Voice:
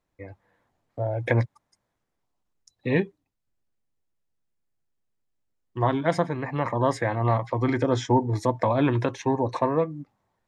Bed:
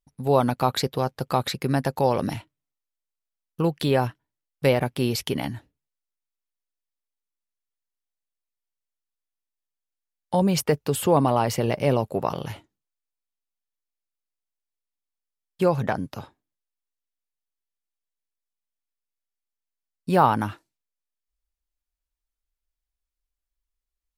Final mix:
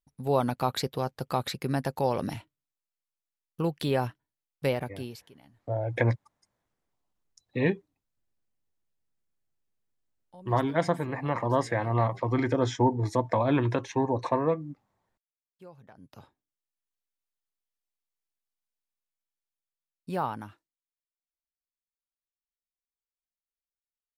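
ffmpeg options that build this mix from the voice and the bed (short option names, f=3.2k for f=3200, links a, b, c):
-filter_complex "[0:a]adelay=4700,volume=-2.5dB[a];[1:a]volume=20.5dB,afade=t=out:st=4.53:d=0.74:silence=0.0707946,afade=t=in:st=15.95:d=1.03:silence=0.0501187,afade=t=out:st=18.66:d=2.14:silence=0.0707946[b];[a][b]amix=inputs=2:normalize=0"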